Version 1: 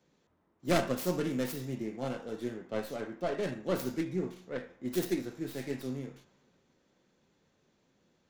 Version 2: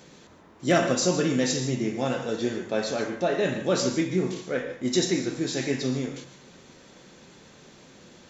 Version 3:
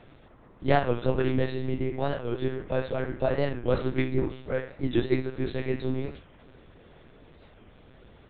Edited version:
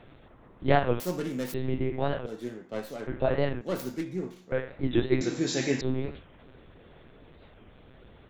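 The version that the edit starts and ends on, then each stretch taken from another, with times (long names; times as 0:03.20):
3
0:01.00–0:01.54: punch in from 1
0:02.26–0:03.07: punch in from 1
0:03.61–0:04.52: punch in from 1
0:05.21–0:05.81: punch in from 2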